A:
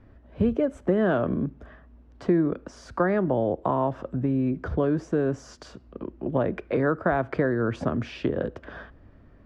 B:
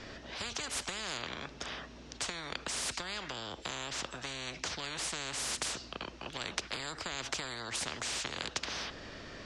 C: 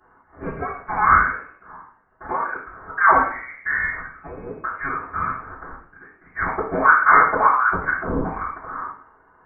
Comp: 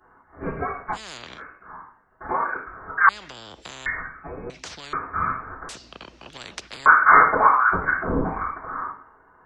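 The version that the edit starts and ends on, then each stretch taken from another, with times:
C
0.95–1.39 s: from B, crossfade 0.06 s
3.09–3.86 s: from B
4.50–4.93 s: from B
5.69–6.86 s: from B
not used: A

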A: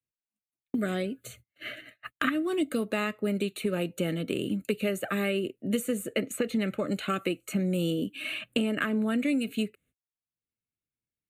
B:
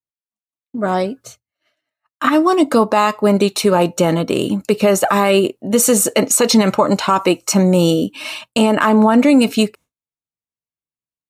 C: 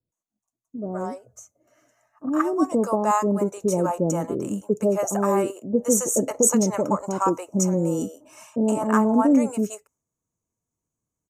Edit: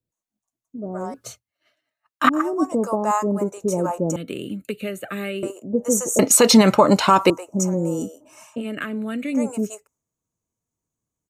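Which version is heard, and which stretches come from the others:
C
1.14–2.29 s: from B
4.16–5.43 s: from A
6.19–7.30 s: from B
8.61–9.35 s: from A, crossfade 0.10 s

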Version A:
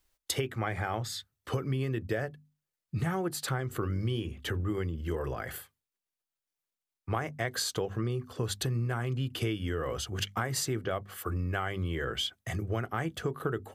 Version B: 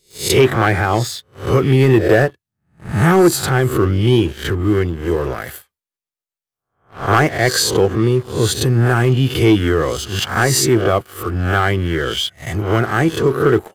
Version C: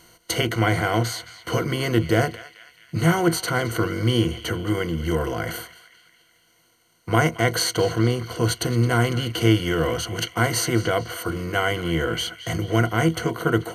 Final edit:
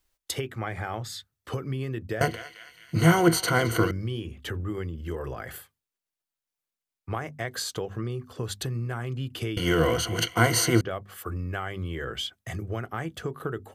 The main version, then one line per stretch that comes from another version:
A
2.21–3.91 s: from C
9.57–10.81 s: from C
not used: B

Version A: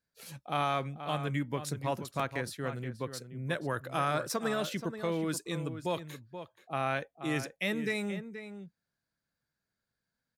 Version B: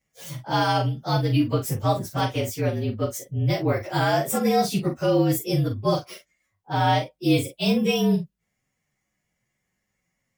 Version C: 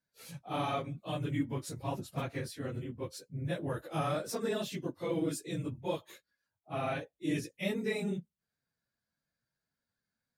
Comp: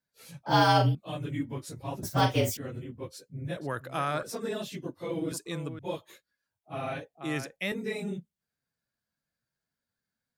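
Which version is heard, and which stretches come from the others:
C
0.46–0.95 s: from B
2.03–2.57 s: from B
3.57–4.23 s: from A
5.32–5.79 s: from A
7.14–7.72 s: from A

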